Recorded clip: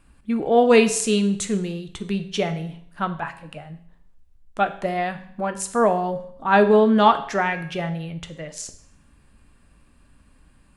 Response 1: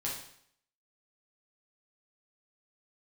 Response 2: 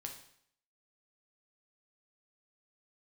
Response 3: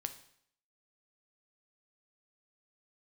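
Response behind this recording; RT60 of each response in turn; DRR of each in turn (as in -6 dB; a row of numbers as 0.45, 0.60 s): 3; 0.65, 0.65, 0.65 s; -5.0, 2.5, 8.5 dB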